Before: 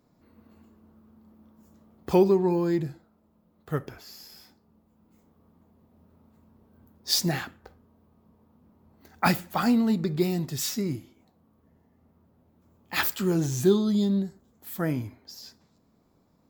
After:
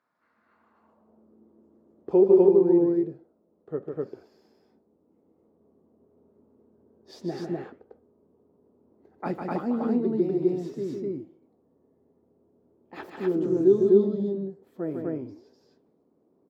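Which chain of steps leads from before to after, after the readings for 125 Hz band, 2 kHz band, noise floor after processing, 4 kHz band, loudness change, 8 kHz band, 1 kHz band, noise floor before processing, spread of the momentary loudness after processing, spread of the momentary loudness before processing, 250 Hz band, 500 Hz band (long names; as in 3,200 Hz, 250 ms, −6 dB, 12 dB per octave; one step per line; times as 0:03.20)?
−6.5 dB, −13.5 dB, −68 dBFS, −22.0 dB, +1.0 dB, below −25 dB, −6.5 dB, −66 dBFS, 19 LU, 19 LU, +0.5 dB, +6.0 dB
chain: flanger 1.3 Hz, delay 1.7 ms, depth 8.8 ms, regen −89%
band-pass filter sweep 1,500 Hz → 400 Hz, 0:00.44–0:01.15
loudspeakers that aren't time-aligned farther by 52 metres −5 dB, 86 metres 0 dB
level +7.5 dB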